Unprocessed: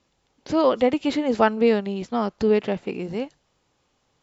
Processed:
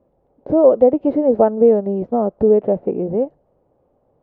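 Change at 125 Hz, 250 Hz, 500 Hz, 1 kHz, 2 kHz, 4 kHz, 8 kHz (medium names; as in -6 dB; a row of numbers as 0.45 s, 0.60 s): +5.0 dB, +4.5 dB, +8.0 dB, +1.0 dB, under -15 dB, under -25 dB, no reading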